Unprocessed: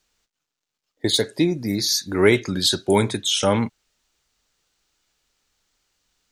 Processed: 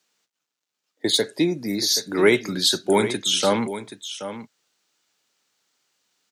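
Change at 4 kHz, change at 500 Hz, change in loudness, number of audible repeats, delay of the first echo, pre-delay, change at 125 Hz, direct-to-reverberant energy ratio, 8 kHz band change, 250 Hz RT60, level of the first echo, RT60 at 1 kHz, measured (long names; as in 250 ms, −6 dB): +0.5 dB, −0.5 dB, −1.0 dB, 1, 777 ms, no reverb audible, −7.0 dB, no reverb audible, +0.5 dB, no reverb audible, −12.0 dB, no reverb audible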